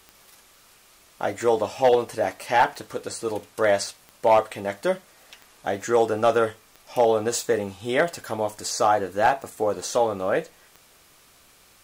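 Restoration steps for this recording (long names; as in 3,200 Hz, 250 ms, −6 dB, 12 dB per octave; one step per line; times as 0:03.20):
clipped peaks rebuilt −10 dBFS
click removal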